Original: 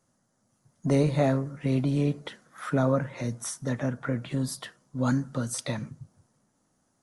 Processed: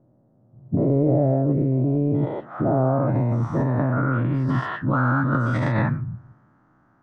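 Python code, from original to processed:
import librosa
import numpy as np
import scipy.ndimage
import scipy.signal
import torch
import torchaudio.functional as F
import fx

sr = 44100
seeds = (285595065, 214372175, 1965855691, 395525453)

p1 = fx.spec_dilate(x, sr, span_ms=240)
p2 = fx.graphic_eq_31(p1, sr, hz=(125, 315, 500, 10000), db=(9, 6, -8, -6))
p3 = fx.over_compress(p2, sr, threshold_db=-24.0, ratio=-0.5)
p4 = p2 + (p3 * 10.0 ** (2.0 / 20.0))
p5 = fx.filter_sweep_lowpass(p4, sr, from_hz=540.0, to_hz=1400.0, start_s=1.73, end_s=4.8, q=2.5)
y = p5 * 10.0 ** (-6.0 / 20.0)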